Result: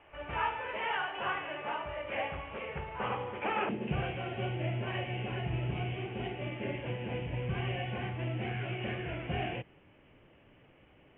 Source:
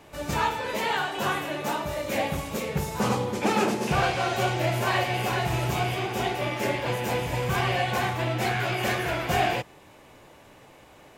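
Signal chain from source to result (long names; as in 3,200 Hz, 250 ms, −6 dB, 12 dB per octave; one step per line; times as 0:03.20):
parametric band 200 Hz −13 dB 1.9 octaves, from 0:03.69 1,100 Hz
background noise white −57 dBFS
Butterworth low-pass 3,100 Hz 96 dB per octave
level −5 dB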